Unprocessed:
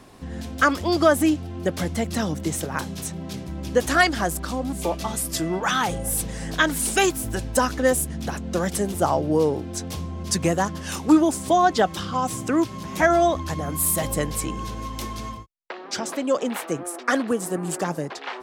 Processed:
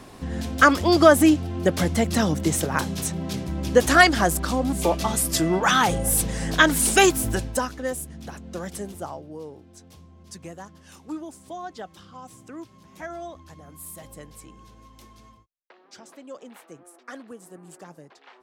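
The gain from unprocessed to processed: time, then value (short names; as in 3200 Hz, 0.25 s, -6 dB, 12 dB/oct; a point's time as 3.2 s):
7.31 s +3.5 dB
7.74 s -9 dB
8.86 s -9 dB
9.3 s -18 dB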